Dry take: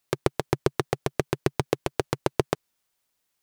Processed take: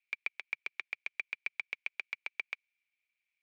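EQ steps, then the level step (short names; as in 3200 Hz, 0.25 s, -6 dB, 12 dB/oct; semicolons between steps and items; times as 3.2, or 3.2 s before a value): ladder band-pass 2400 Hz, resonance 90%; tilt -2 dB/oct; +3.0 dB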